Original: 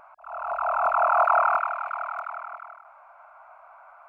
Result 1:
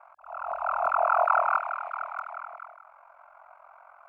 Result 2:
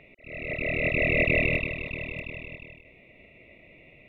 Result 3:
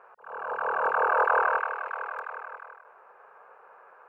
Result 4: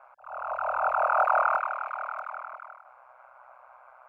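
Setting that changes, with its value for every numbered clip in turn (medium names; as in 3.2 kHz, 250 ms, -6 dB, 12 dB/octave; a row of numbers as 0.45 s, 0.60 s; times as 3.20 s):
ring modulator, frequency: 22 Hz, 1.3 kHz, 200 Hz, 63 Hz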